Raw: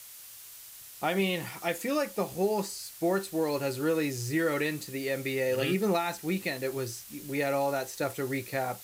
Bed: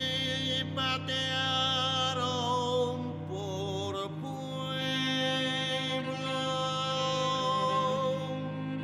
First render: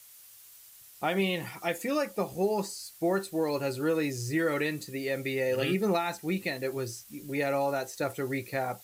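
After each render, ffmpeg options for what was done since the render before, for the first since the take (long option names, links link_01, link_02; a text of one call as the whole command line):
ffmpeg -i in.wav -af "afftdn=noise_reduction=7:noise_floor=-48" out.wav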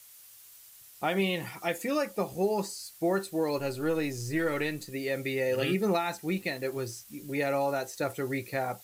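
ffmpeg -i in.wav -filter_complex "[0:a]asettb=1/sr,asplit=3[link_01][link_02][link_03];[link_01]atrim=end=3.584[link_04];[link_02]atrim=start=3.58:end=4.92,asetpts=PTS-STARTPTS,afade=type=in:duration=0.004:curve=qsin,afade=type=out:start_time=1.336:duration=0.004:curve=qsin,aeval=exprs='if(lt(val(0),0),0.708*val(0),val(0))':channel_layout=same[link_05];[link_03]atrim=start=4.916[link_06];[link_04][link_05]acrossfade=duration=0.004:curve1=hsin:curve2=qsin[link_07];[link_07][link_06]acrossfade=duration=0.004:curve1=qsin:curve2=hsin,asettb=1/sr,asplit=3[link_08][link_09][link_10];[link_08]atrim=end=6.304[link_11];[link_09]atrim=start=6.3:end=6.96,asetpts=PTS-STARTPTS,afade=type=in:duration=0.004:curve=qsin,afade=type=out:start_time=0.656:duration=0.004:curve=qsin,aeval=exprs='sgn(val(0))*max(abs(val(0))-0.0015,0)':channel_layout=same[link_12];[link_10]atrim=start=6.956[link_13];[link_11][link_12]acrossfade=duration=0.004:curve1=hsin:curve2=qsin[link_14];[link_14][link_13]acrossfade=duration=0.004:curve1=qsin:curve2=hsin" out.wav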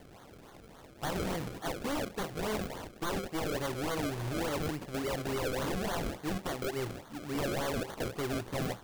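ffmpeg -i in.wav -af "acrusher=samples=33:mix=1:aa=0.000001:lfo=1:lforange=33:lforate=3.5,aeval=exprs='0.0376*(abs(mod(val(0)/0.0376+3,4)-2)-1)':channel_layout=same" out.wav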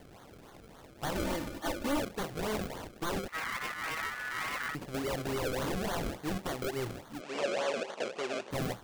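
ffmpeg -i in.wav -filter_complex "[0:a]asettb=1/sr,asplit=3[link_01][link_02][link_03];[link_01]atrim=end=1.154[link_04];[link_02]atrim=start=1.15:end=2.01,asetpts=PTS-STARTPTS,afade=type=in:duration=0.004:curve=qsin,afade=type=out:start_time=0.856:duration=0.004:curve=qsin,aecho=1:1:3.4:0.65,atrim=end_sample=37926[link_05];[link_03]atrim=start=2.006[link_06];[link_04][link_05]acrossfade=duration=0.004:curve1=hsin:curve2=qsin[link_07];[link_07][link_06]acrossfade=duration=0.004:curve1=qsin:curve2=hsin,asettb=1/sr,asplit=3[link_08][link_09][link_10];[link_08]atrim=end=3.284[link_11];[link_09]atrim=start=3.28:end=4.75,asetpts=PTS-STARTPTS,afade=type=in:duration=0.004:curve=qsin,afade=type=out:start_time=1.466:duration=0.004:curve=qsin,aeval=exprs='val(0)*sin(2*PI*1600*n/s)':channel_layout=same[link_12];[link_10]atrim=start=4.746[link_13];[link_11][link_12]acrossfade=duration=0.004:curve1=hsin:curve2=qsin[link_14];[link_14][link_13]acrossfade=duration=0.004:curve1=qsin:curve2=hsin,asettb=1/sr,asplit=3[link_15][link_16][link_17];[link_15]atrim=end=7.214[link_18];[link_16]atrim=start=7.21:end=8.51,asetpts=PTS-STARTPTS,afade=type=in:duration=0.004:curve=qsin,afade=type=out:start_time=1.296:duration=0.004:curve=qsin,highpass=frequency=230:width=0.5412,highpass=frequency=230:width=1.3066,equalizer=frequency=290:width_type=q:width=4:gain=-10,equalizer=frequency=580:width_type=q:width=4:gain=6,equalizer=frequency=2600:width_type=q:width=4:gain=6,lowpass=frequency=7700:width=0.5412,lowpass=frequency=7700:width=1.3066[link_19];[link_17]atrim=start=8.506[link_20];[link_18][link_19]acrossfade=duration=0.004:curve1=hsin:curve2=qsin[link_21];[link_21][link_20]acrossfade=duration=0.004:curve1=qsin:curve2=hsin" out.wav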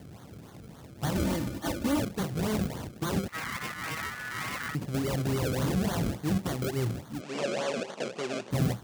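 ffmpeg -i in.wav -af "highpass=95,bass=frequency=250:gain=14,treble=frequency=4000:gain=4" out.wav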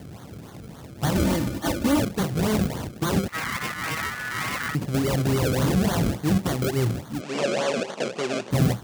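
ffmpeg -i in.wav -af "volume=6.5dB" out.wav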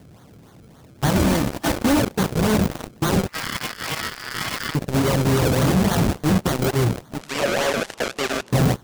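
ffmpeg -i in.wav -filter_complex "[0:a]asplit=2[link_01][link_02];[link_02]aeval=exprs='0.106*(abs(mod(val(0)/0.106+3,4)-2)-1)':channel_layout=same,volume=-5.5dB[link_03];[link_01][link_03]amix=inputs=2:normalize=0,aeval=exprs='0.266*(cos(1*acos(clip(val(0)/0.266,-1,1)))-cos(1*PI/2))+0.0531*(cos(7*acos(clip(val(0)/0.266,-1,1)))-cos(7*PI/2))':channel_layout=same" out.wav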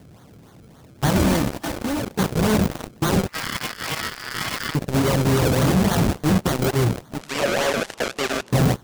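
ffmpeg -i in.wav -filter_complex "[0:a]asettb=1/sr,asplit=3[link_01][link_02][link_03];[link_01]atrim=end=1.534[link_04];[link_02]atrim=start=1.53:end=2.19,asetpts=PTS-STARTPTS,afade=type=in:duration=0.004:curve=qsin,afade=type=out:start_time=0.656:duration=0.004:curve=qsin,acompressor=threshold=-23dB:ratio=4:attack=3.2:release=140:knee=1:detection=peak[link_05];[link_03]atrim=start=2.186[link_06];[link_04][link_05]acrossfade=duration=0.004:curve1=hsin:curve2=qsin[link_07];[link_07][link_06]acrossfade=duration=0.004:curve1=qsin:curve2=hsin" out.wav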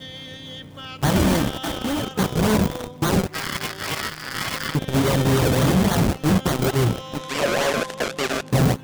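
ffmpeg -i in.wav -i bed.wav -filter_complex "[1:a]volume=-6dB[link_01];[0:a][link_01]amix=inputs=2:normalize=0" out.wav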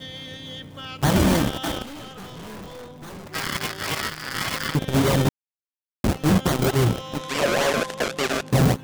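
ffmpeg -i in.wav -filter_complex "[0:a]asettb=1/sr,asplit=3[link_01][link_02][link_03];[link_01]atrim=end=1.824[link_04];[link_02]atrim=start=1.82:end=3.27,asetpts=PTS-STARTPTS,afade=type=in:duration=0.004:curve=qsin,afade=type=out:start_time=1.446:duration=0.004:curve=qsin,aeval=exprs='(tanh(63.1*val(0)+0.25)-tanh(0.25))/63.1':channel_layout=same[link_05];[link_03]atrim=start=3.266[link_06];[link_04][link_05]acrossfade=duration=0.004:curve1=hsin:curve2=qsin[link_07];[link_07][link_06]acrossfade=duration=0.004:curve1=qsin:curve2=hsin,asplit=3[link_08][link_09][link_10];[link_08]atrim=end=5.29,asetpts=PTS-STARTPTS,afade=type=out:start_time=5.286:duration=0.004:curve=hsin[link_11];[link_09]atrim=start=5.29:end=6.04,asetpts=PTS-STARTPTS,volume=0[link_12];[link_10]atrim=start=6.04,asetpts=PTS-STARTPTS,afade=type=in:duration=0.004:curve=hsin[link_13];[link_11][link_12][link_13]concat=n=3:v=0:a=1" out.wav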